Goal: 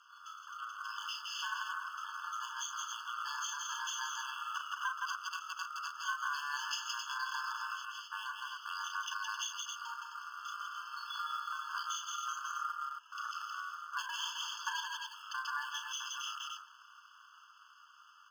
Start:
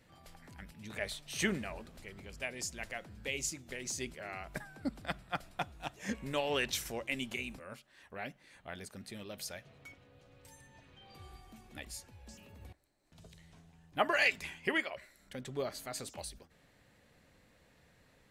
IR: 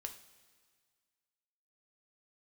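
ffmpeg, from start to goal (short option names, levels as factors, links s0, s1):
-filter_complex "[0:a]equalizer=f=770:w=2.2:g=5.5,aresample=11025,asoftclip=type=tanh:threshold=0.0473,aresample=44100,aexciter=amount=12.9:drive=5.7:freq=4100,dynaudnorm=f=380:g=17:m=3.55,bass=f=250:g=8,treble=f=4000:g=-7,aecho=1:1:34.99|166.2|262.4:0.501|0.562|0.355,asplit=2[s0][s1];[s1]acrusher=bits=2:mode=log:mix=0:aa=0.000001,volume=0.501[s2];[s0][s2]amix=inputs=2:normalize=0,acompressor=threshold=0.0316:ratio=4,aeval=exprs='val(0)*sin(2*PI*1300*n/s)':c=same,afftfilt=real='re*eq(mod(floor(b*sr/1024/870),2),1)':imag='im*eq(mod(floor(b*sr/1024/870),2),1)':win_size=1024:overlap=0.75,volume=0.75"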